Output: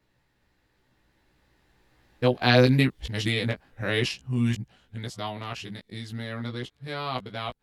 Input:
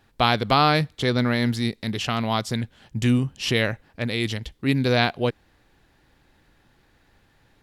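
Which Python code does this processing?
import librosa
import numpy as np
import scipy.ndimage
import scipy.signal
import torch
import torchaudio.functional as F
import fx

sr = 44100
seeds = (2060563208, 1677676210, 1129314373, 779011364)

y = x[::-1].copy()
y = fx.doppler_pass(y, sr, speed_mps=17, closest_m=13.0, pass_at_s=2.84)
y = fx.doubler(y, sr, ms=16.0, db=-4.5)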